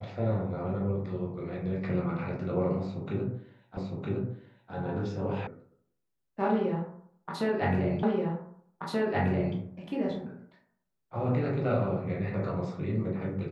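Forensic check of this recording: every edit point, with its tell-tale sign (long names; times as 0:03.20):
0:03.77: the same again, the last 0.96 s
0:05.47: cut off before it has died away
0:08.03: the same again, the last 1.53 s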